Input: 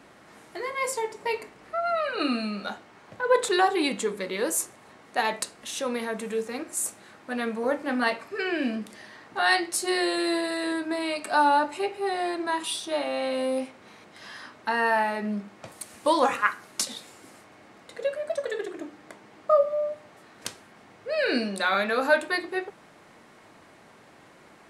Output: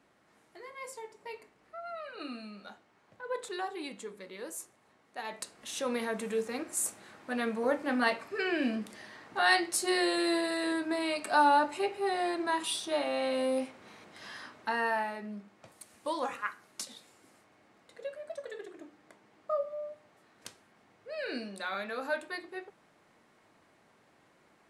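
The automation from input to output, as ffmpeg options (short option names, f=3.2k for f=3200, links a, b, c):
-af "volume=-3dB,afade=t=in:st=5.22:d=0.72:silence=0.251189,afade=t=out:st=14.36:d=0.91:silence=0.354813"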